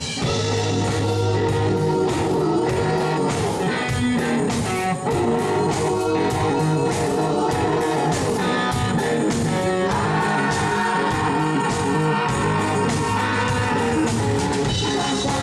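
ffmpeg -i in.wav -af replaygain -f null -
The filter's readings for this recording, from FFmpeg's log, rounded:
track_gain = +4.7 dB
track_peak = 0.232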